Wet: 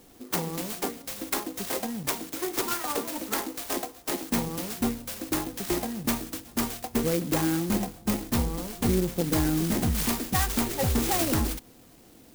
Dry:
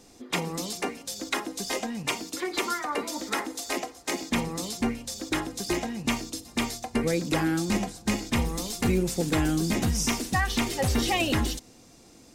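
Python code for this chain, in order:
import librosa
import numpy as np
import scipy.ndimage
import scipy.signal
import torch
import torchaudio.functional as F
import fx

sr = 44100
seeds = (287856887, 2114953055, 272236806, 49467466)

y = fx.lowpass(x, sr, hz=4600.0, slope=24, at=(7.1, 9.24))
y = fx.clock_jitter(y, sr, seeds[0], jitter_ms=0.11)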